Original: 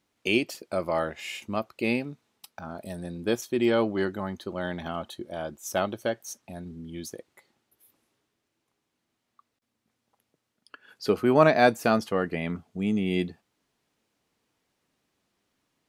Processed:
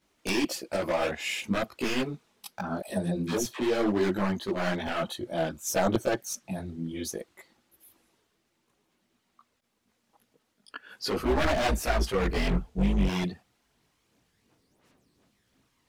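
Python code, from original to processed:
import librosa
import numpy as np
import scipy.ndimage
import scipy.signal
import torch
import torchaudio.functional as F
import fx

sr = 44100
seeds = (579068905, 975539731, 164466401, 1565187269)

p1 = fx.octave_divider(x, sr, octaves=2, level_db=-3.0, at=(11.17, 13.07))
p2 = fx.over_compress(p1, sr, threshold_db=-28.0, ratio=-0.5)
p3 = p1 + (p2 * librosa.db_to_amplitude(1.5))
p4 = 10.0 ** (-16.0 / 20.0) * (np.abs((p3 / 10.0 ** (-16.0 / 20.0) + 3.0) % 4.0 - 2.0) - 1.0)
p5 = fx.dispersion(p4, sr, late='lows', ms=87.0, hz=600.0, at=(2.8, 3.6))
p6 = fx.chorus_voices(p5, sr, voices=6, hz=1.4, base_ms=18, depth_ms=3.2, mix_pct=65)
y = p6 * librosa.db_to_amplitude(-1.5)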